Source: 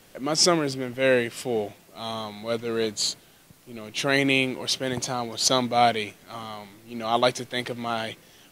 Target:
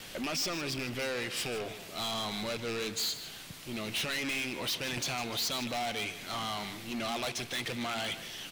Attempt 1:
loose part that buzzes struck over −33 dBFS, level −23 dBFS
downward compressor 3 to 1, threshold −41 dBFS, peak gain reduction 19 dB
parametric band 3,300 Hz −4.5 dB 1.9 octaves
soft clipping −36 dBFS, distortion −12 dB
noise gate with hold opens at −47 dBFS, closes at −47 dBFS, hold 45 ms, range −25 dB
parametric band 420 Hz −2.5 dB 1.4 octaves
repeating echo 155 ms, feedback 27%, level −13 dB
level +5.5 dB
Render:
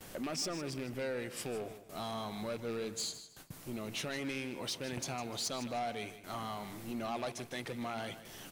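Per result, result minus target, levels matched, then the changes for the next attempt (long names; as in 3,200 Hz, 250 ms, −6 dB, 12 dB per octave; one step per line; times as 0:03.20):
downward compressor: peak gain reduction +5.5 dB; 4,000 Hz band −3.5 dB
change: downward compressor 3 to 1, threshold −33 dBFS, peak gain reduction 14 dB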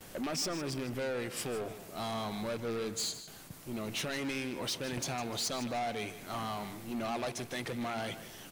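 4,000 Hz band −3.5 dB
change: first parametric band 3,300 Hz +7.5 dB 1.9 octaves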